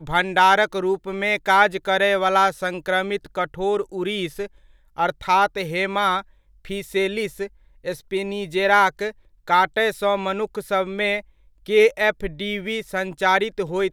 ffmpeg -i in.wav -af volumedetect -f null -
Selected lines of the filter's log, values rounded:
mean_volume: -21.9 dB
max_volume: -2.5 dB